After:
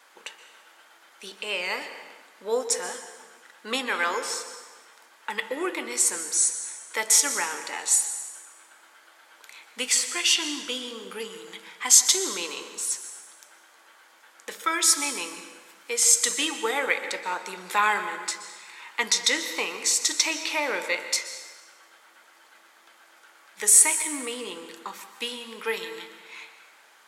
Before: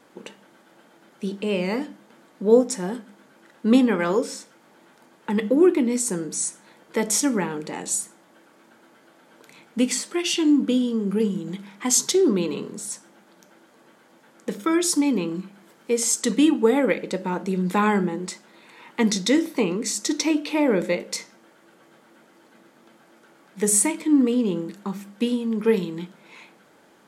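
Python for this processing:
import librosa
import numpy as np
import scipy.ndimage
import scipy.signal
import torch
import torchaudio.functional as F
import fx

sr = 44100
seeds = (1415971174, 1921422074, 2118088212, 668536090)

y = scipy.signal.sosfilt(scipy.signal.butter(2, 1100.0, 'highpass', fs=sr, output='sos'), x)
y = fx.rev_plate(y, sr, seeds[0], rt60_s=1.4, hf_ratio=0.85, predelay_ms=110, drr_db=9.5)
y = y * librosa.db_to_amplitude(4.5)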